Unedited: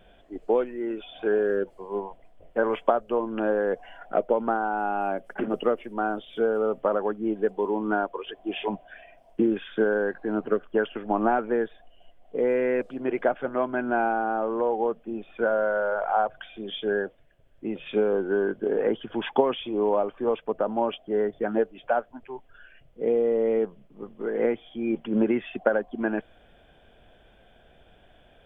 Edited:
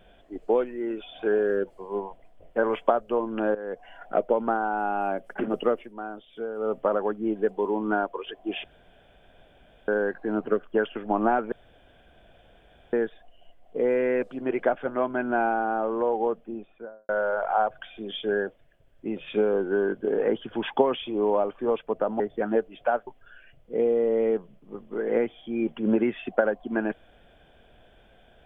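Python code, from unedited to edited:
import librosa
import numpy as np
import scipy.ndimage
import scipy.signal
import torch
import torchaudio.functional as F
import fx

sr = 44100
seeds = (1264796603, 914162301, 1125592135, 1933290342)

y = fx.studio_fade_out(x, sr, start_s=14.85, length_s=0.83)
y = fx.edit(y, sr, fx.fade_in_from(start_s=3.55, length_s=0.48, floor_db=-15.0),
    fx.fade_down_up(start_s=5.76, length_s=0.96, db=-9.0, fade_s=0.16),
    fx.room_tone_fill(start_s=8.64, length_s=1.24),
    fx.insert_room_tone(at_s=11.52, length_s=1.41),
    fx.cut(start_s=20.79, length_s=0.44),
    fx.cut(start_s=22.1, length_s=0.25), tone=tone)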